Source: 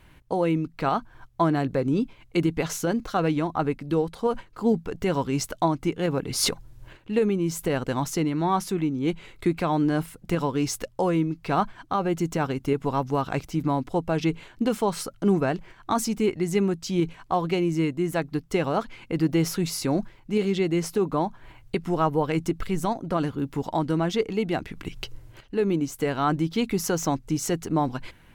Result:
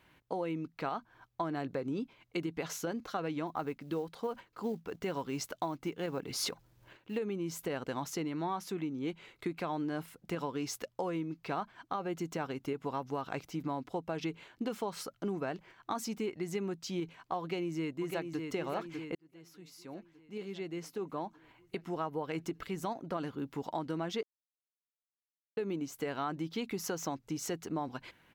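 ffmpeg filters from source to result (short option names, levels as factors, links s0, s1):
-filter_complex "[0:a]asettb=1/sr,asplit=3[s0][s1][s2];[s0]atrim=end=3.474[s3];[s1]atrim=start=3.47:end=7.18,asetpts=PTS-STARTPTS,afade=t=in:d=0.004:c=qsin,afade=t=out:st=3.706:d=0.004:c=qsin,acrusher=bits=8:mode=log:mix=0:aa=0.000001[s4];[s2]atrim=start=7.176[s5];[s3][s4]acrossfade=d=0.004:c1=hsin:c2=qsin[s6];[s6][s5]acrossfade=d=0.004:c1=qsin:c2=hsin,asplit=2[s7][s8];[s8]afade=t=in:st=17.41:d=0.01,afade=t=out:st=18.44:d=0.01,aecho=0:1:600|1200|1800|2400|3000|3600|4200|4800:0.473151|0.283891|0.170334|0.102201|0.0613204|0.0367922|0.0220753|0.0132452[s9];[s7][s9]amix=inputs=2:normalize=0,asplit=4[s10][s11][s12][s13];[s10]atrim=end=19.15,asetpts=PTS-STARTPTS,afade=t=out:st=19.146:d=0.004:c=hsin[s14];[s11]atrim=start=19.15:end=24.23,asetpts=PTS-STARTPTS,afade=t=in:d=3.56,afade=t=out:st=5.076:d=0.004:c=hsin[s15];[s12]atrim=start=24.23:end=25.57,asetpts=PTS-STARTPTS,volume=0[s16];[s13]atrim=start=25.57,asetpts=PTS-STARTPTS,afade=t=in:d=0.004:c=hsin[s17];[s14][s15][s16][s17]concat=n=4:v=0:a=1,highpass=f=260:p=1,equalizer=f=9300:w=1.5:g=-6,acompressor=threshold=0.0562:ratio=6,volume=0.473"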